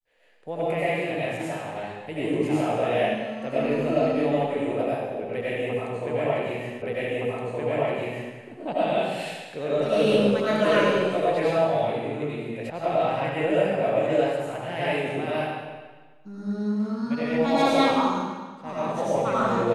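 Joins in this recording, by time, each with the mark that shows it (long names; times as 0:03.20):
0:06.82: the same again, the last 1.52 s
0:12.70: cut off before it has died away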